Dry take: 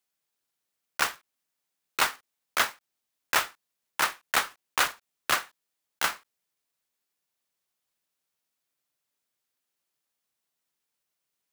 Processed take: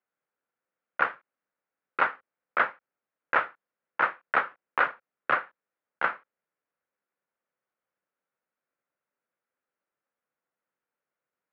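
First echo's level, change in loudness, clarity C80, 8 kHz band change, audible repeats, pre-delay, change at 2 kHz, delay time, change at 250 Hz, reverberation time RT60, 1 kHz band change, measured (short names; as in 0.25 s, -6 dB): none, -0.5 dB, none, under -40 dB, none, none, +1.0 dB, none, 0.0 dB, none, +2.5 dB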